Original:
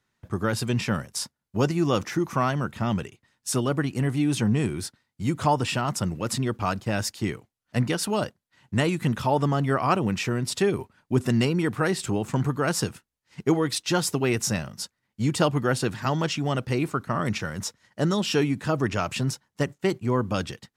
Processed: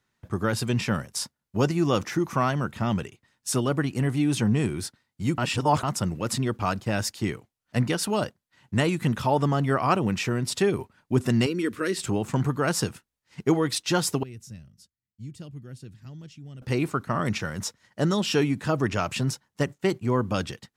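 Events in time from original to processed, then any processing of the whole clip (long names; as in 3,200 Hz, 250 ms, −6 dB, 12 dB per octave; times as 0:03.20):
0:05.38–0:05.83: reverse
0:11.46–0:11.97: phaser with its sweep stopped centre 330 Hz, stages 4
0:14.23–0:16.62: guitar amp tone stack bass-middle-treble 10-0-1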